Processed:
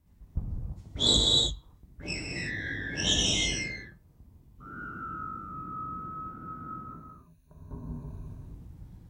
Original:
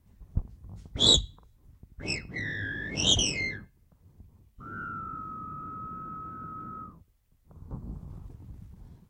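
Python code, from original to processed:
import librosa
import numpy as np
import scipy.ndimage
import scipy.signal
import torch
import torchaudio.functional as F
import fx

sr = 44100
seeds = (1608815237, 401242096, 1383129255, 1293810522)

y = fx.ripple_eq(x, sr, per_octave=1.5, db=14, at=(6.87, 8.27))
y = fx.rev_gated(y, sr, seeds[0], gate_ms=360, shape='flat', drr_db=-2.5)
y = F.gain(torch.from_numpy(y), -4.5).numpy()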